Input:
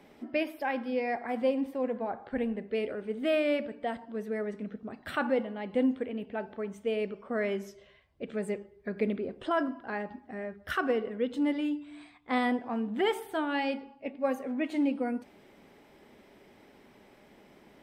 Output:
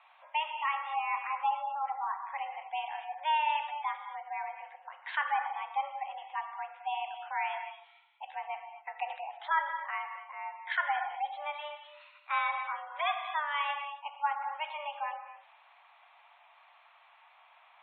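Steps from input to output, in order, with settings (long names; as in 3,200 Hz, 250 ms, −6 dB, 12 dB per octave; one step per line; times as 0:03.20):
reverb whose tail is shaped and stops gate 280 ms flat, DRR 5.5 dB
single-sideband voice off tune +300 Hz 500–3,300 Hz
gate on every frequency bin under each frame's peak −30 dB strong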